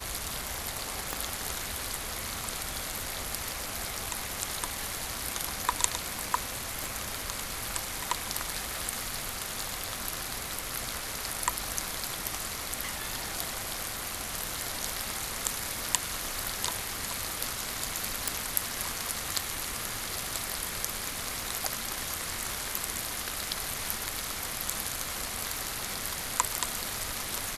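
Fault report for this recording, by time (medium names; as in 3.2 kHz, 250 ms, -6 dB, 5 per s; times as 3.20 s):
crackle 54 per s -42 dBFS
1.13 s: pop
6.84 s: pop
18.28 s: pop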